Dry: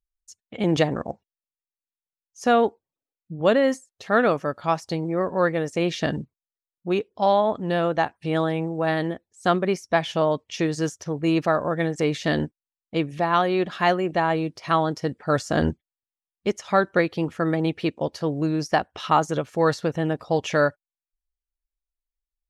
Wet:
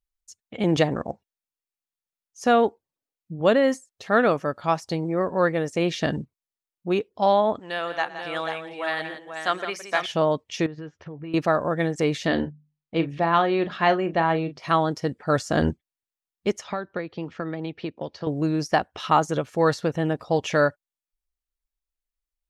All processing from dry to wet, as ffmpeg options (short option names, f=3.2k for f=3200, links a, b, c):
-filter_complex "[0:a]asettb=1/sr,asplit=3[a][b][c];[a]atrim=end=7.594[d];[b]atrim=start=7.59:end=10.06,asetpts=PTS-STARTPTS,afade=t=in:d=0.004:c=qsin,afade=t=out:st=2.466:d=0.004:c=qsin,highpass=f=1.4k:p=1,equalizer=f=1.8k:w=0.58:g=3,aecho=1:1:114|170|486:0.112|0.282|0.447,atrim=end_sample=108927[e];[c]atrim=start=10.056[f];[d][e]acrossfade=d=0.004:c1=hsin:c2=qsin[g];[g][f]acrossfade=d=0.004:c1=qsin:c2=hsin,asettb=1/sr,asplit=3[h][i][j];[h]atrim=end=10.664[k];[i]atrim=start=10.66:end=11.34,asetpts=PTS-STARTPTS,afade=t=in:d=0.004:c=qsin,afade=t=out:st=0.676:d=0.004:c=qsin,lowpass=f=3.1k:w=0.5412,lowpass=f=3.1k:w=1.3066,asplit=2[l][m];[m]adelay=13,volume=-11dB[n];[l][n]amix=inputs=2:normalize=0,atrim=end_sample=29988,acompressor=threshold=-34dB:ratio=5:attack=3.2:release=140:knee=1:detection=peak[o];[j]atrim=start=11.336[p];[k][o]acrossfade=d=0.004:c1=hsin:c2=qsin[q];[q][p]acrossfade=d=0.004:c1=qsin:c2=hsin,asettb=1/sr,asplit=3[r][s][t];[r]atrim=end=12.274[u];[s]atrim=start=12.27:end=14.6,asetpts=PTS-STARTPTS,afade=t=in:d=0.004:c=qsin,afade=t=out:st=2.326:d=0.004:c=qsin,lowpass=4.3k,bandreject=f=50:t=h:w=6,bandreject=f=100:t=h:w=6,bandreject=f=150:t=h:w=6,bandreject=f=200:t=h:w=6,bandreject=f=250:t=h:w=6,asplit=2[v][w];[w]adelay=36,volume=-11.5dB[x];[v][x]amix=inputs=2:normalize=0,atrim=end_sample=102753[y];[t]atrim=start=14.596[z];[u][y]acrossfade=d=0.004:c1=hsin:c2=qsin[aa];[aa][z]acrossfade=d=0.004:c1=qsin:c2=hsin,asettb=1/sr,asplit=3[ab][ac][ad];[ab]atrim=end=16.644[ae];[ac]atrim=start=16.64:end=18.27,asetpts=PTS-STARTPTS,afade=t=in:d=0.004:c=qsin,afade=t=out:st=1.626:d=0.004:c=qsin,lowpass=f=5.4k:w=0.5412,lowpass=f=5.4k:w=1.3066,acrossover=split=110|1600[af][ag][ah];[af]acompressor=threshold=-54dB:ratio=4[ai];[ag]acompressor=threshold=-29dB:ratio=4[aj];[ah]acompressor=threshold=-43dB:ratio=4[ak];[ai][aj][ak]amix=inputs=3:normalize=0[al];[ad]atrim=start=18.266[am];[ae][al]acrossfade=d=0.004:c1=hsin:c2=qsin[an];[an][am]acrossfade=d=0.004:c1=qsin:c2=hsin"